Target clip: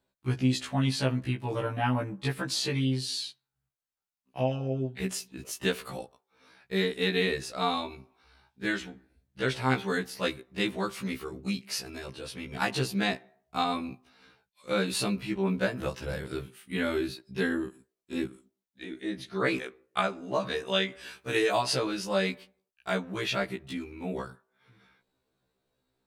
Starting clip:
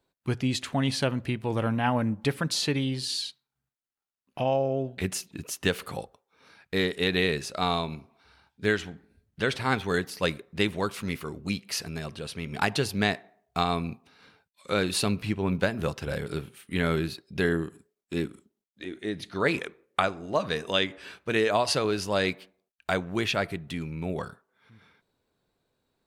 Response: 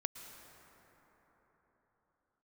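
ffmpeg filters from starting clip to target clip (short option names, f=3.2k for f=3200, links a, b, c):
-filter_complex "[0:a]asettb=1/sr,asplit=3[a][b][c];[a]atrim=end=20.924[d];[b]atrim=start=20.92:end=21.61,asetpts=PTS-STARTPTS,afade=t=in:d=0.004:c=qsin,afade=t=out:st=0.686:d=0.004:c=qsin,aemphasis=mode=production:type=cd[e];[c]atrim=start=21.606[f];[d][e]acrossfade=d=0.004:c1=hsin:c2=qsin[g];[g][f]acrossfade=d=0.004:c1=qsin:c2=hsin,afftfilt=real='re*1.73*eq(mod(b,3),0)':imag='im*1.73*eq(mod(b,3),0)':win_size=2048:overlap=0.75"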